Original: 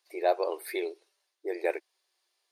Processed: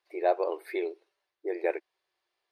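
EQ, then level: tone controls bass +8 dB, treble -15 dB; 0.0 dB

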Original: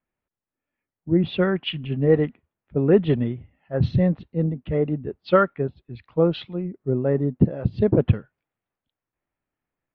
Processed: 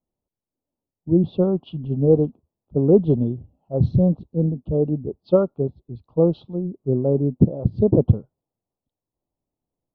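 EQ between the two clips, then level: Butterworth band-stop 2000 Hz, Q 0.59; bell 1600 Hz -13.5 dB 0.22 oct; high shelf 2100 Hz -11.5 dB; +2.5 dB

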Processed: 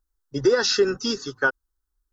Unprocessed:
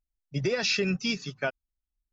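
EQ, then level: bell 600 Hz +4.5 dB 1.4 oct; bell 1500 Hz +6 dB 0.51 oct; fixed phaser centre 640 Hz, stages 6; +8.5 dB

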